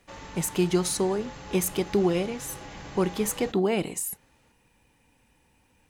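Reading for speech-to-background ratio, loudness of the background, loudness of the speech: 15.0 dB, −42.5 LKFS, −27.5 LKFS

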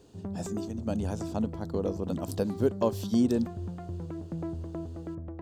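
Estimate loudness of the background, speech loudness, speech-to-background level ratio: −38.5 LKFS, −31.0 LKFS, 7.5 dB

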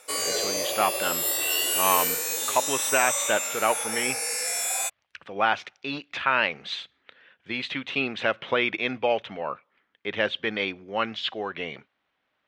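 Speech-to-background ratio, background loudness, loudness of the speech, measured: −2.5 dB, −25.0 LKFS, −27.5 LKFS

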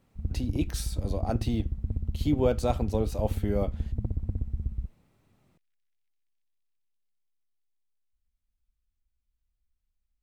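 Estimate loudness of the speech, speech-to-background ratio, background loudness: −31.0 LKFS, 3.0 dB, −34.0 LKFS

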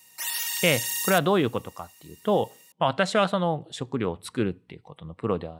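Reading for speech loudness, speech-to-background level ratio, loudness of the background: −26.0 LKFS, 1.5 dB, −27.5 LKFS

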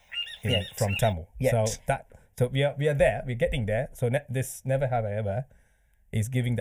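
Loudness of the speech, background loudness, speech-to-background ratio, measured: −28.0 LKFS, −33.0 LKFS, 5.0 dB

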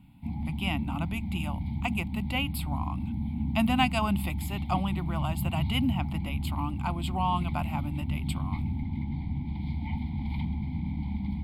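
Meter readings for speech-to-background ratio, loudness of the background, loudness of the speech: 0.5 dB, −33.0 LKFS, −32.5 LKFS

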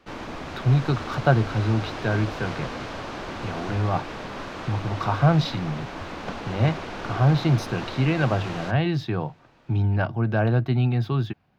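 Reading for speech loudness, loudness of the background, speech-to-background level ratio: −24.5 LKFS, −34.5 LKFS, 10.0 dB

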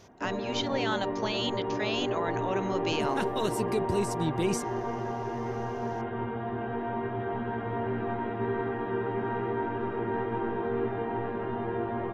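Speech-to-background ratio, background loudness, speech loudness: 0.0 dB, −32.5 LKFS, −32.5 LKFS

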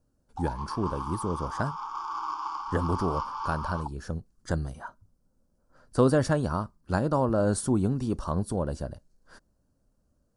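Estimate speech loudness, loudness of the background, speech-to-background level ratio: −29.5 LKFS, −35.5 LKFS, 6.0 dB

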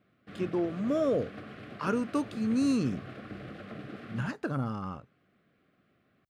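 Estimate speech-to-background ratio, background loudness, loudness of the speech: 13.0 dB, −44.5 LKFS, −31.5 LKFS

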